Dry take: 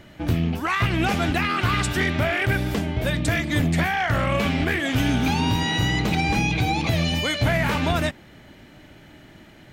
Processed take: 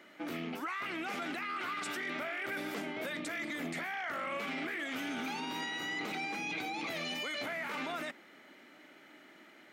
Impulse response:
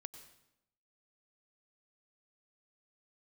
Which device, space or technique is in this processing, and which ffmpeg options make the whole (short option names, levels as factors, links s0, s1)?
laptop speaker: -af "highpass=f=250:w=0.5412,highpass=f=250:w=1.3066,equalizer=f=1300:t=o:w=0.35:g=7,equalizer=f=2100:t=o:w=0.3:g=6.5,alimiter=limit=0.0891:level=0:latency=1:release=11,volume=0.355"